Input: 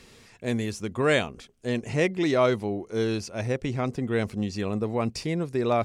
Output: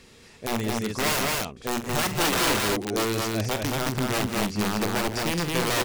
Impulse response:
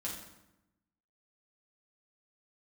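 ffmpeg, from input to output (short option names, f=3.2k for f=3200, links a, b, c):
-af "aeval=exprs='(mod(10*val(0)+1,2)-1)/10':c=same,aecho=1:1:46.65|169.1|221.6:0.282|0.251|0.794"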